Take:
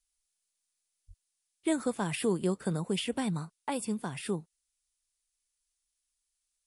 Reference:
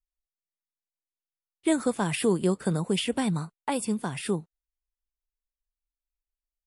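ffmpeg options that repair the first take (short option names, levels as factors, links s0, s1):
-filter_complex "[0:a]asplit=3[s0][s1][s2];[s0]afade=t=out:st=1.07:d=0.02[s3];[s1]highpass=f=140:w=0.5412,highpass=f=140:w=1.3066,afade=t=in:st=1.07:d=0.02,afade=t=out:st=1.19:d=0.02[s4];[s2]afade=t=in:st=1.19:d=0.02[s5];[s3][s4][s5]amix=inputs=3:normalize=0,agate=range=0.0891:threshold=0.000178,asetnsamples=n=441:p=0,asendcmd='1.24 volume volume 5dB',volume=1"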